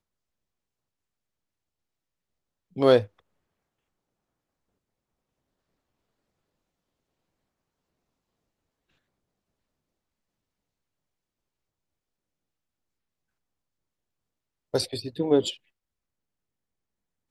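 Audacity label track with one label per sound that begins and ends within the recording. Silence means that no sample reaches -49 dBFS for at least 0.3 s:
2.760000	3.190000	sound
14.740000	15.570000	sound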